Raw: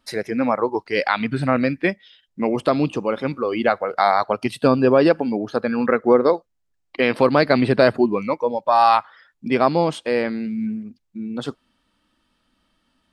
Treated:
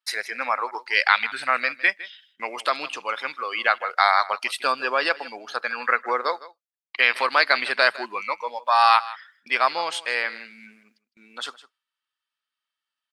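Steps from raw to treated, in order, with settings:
Chebyshev high-pass filter 1,500 Hz, order 2
noise gate with hold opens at −54 dBFS
on a send: single-tap delay 158 ms −18 dB
on the sum: level +5.5 dB

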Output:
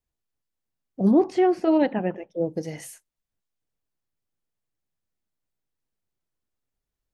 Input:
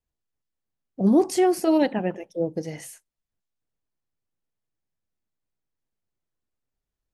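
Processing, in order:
0:01.11–0:02.41: low-pass filter 2,800 Hz 12 dB per octave

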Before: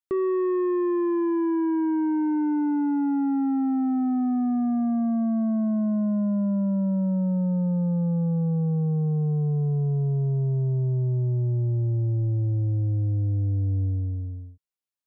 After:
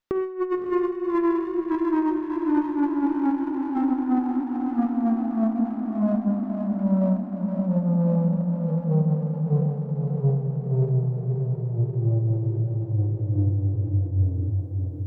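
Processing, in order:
four-comb reverb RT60 1.3 s, combs from 33 ms, DRR 6.5 dB
compressor whose output falls as the input rises −27 dBFS, ratio −0.5
feedback delay with all-pass diffusion 600 ms, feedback 69%, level −6 dB
windowed peak hold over 5 samples
level +3 dB

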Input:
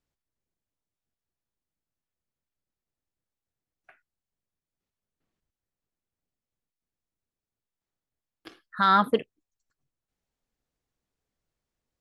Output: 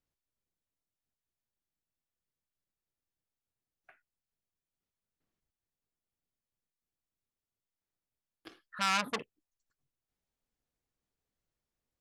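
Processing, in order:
saturating transformer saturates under 3,700 Hz
level −4.5 dB

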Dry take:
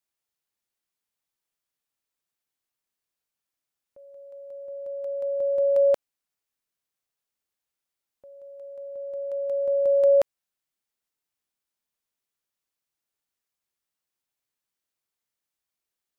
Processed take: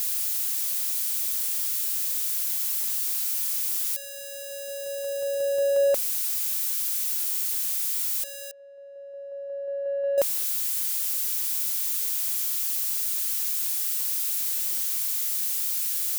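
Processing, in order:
spike at every zero crossing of −22 dBFS
0:08.51–0:10.18: four-pole ladder band-pass 530 Hz, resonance 45%
in parallel at −6 dB: soft clipping −27.5 dBFS, distortion −11 dB
on the sum: level −3 dB

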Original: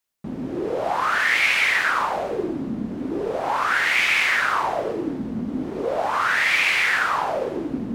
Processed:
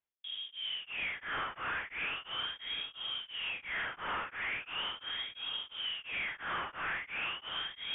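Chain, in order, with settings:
soft clipping −24 dBFS, distortion −8 dB
voice inversion scrambler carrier 3,500 Hz
on a send: feedback echo with a low-pass in the loop 751 ms, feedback 41%, low-pass 2,100 Hz, level −6 dB
on the sum: tremolo along a rectified sine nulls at 2.9 Hz
level −8.5 dB

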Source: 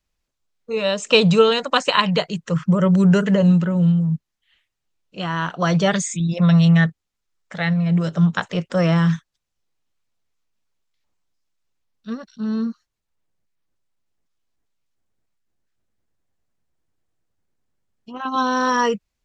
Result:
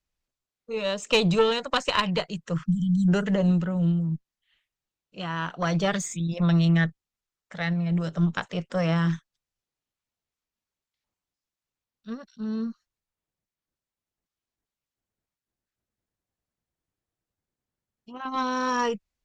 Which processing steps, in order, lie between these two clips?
tube saturation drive 6 dB, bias 0.6
time-frequency box erased 0:02.66–0:03.08, 280–3,000 Hz
level −4 dB

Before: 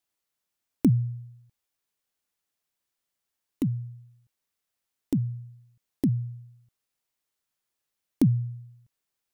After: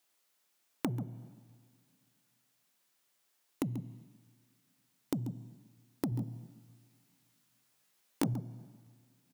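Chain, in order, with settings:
soft clipping −18 dBFS, distortion −15 dB
high-pass filter 85 Hz
low-shelf EQ 150 Hz −11 dB
single-tap delay 137 ms −10.5 dB
coupled-rooms reverb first 0.94 s, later 2.4 s, from −17 dB, DRR 16 dB
downward compressor 5 to 1, threshold −41 dBFS, peak gain reduction 16 dB
0:06.10–0:08.34: double-tracking delay 18 ms −2.5 dB
level +8 dB

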